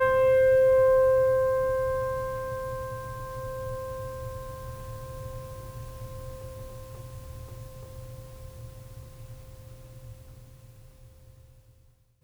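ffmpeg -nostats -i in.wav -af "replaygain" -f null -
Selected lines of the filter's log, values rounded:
track_gain = +5.2 dB
track_peak = 0.143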